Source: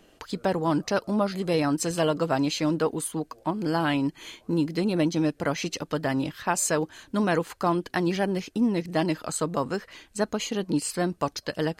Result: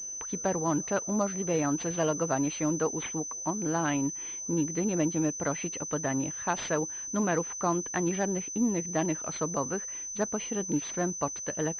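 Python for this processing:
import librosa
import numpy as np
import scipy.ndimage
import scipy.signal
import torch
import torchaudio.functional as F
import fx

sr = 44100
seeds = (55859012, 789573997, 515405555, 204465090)

y = fx.pwm(x, sr, carrier_hz=6100.0)
y = F.gain(torch.from_numpy(y), -4.0).numpy()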